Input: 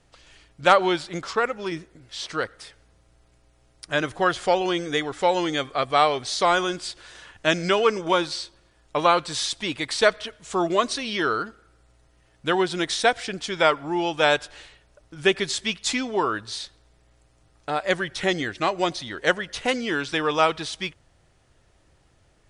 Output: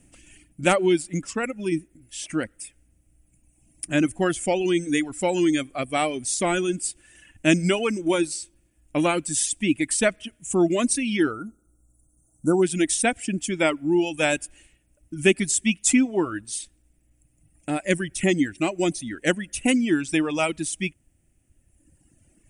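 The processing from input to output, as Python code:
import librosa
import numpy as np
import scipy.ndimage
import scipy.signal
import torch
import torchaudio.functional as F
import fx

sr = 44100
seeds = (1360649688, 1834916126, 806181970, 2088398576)

y = fx.brickwall_bandstop(x, sr, low_hz=1500.0, high_hz=5500.0, at=(11.3, 12.62), fade=0.02)
y = fx.peak_eq(y, sr, hz=430.0, db=-7.0, octaves=0.29)
y = fx.dereverb_blind(y, sr, rt60_s=1.8)
y = fx.curve_eq(y, sr, hz=(130.0, 210.0, 310.0, 450.0, 640.0, 1100.0, 2600.0, 4100.0, 8600.0), db=(0, 7, 8, -4, -6, -15, 0, -16, 11))
y = y * librosa.db_to_amplitude(4.0)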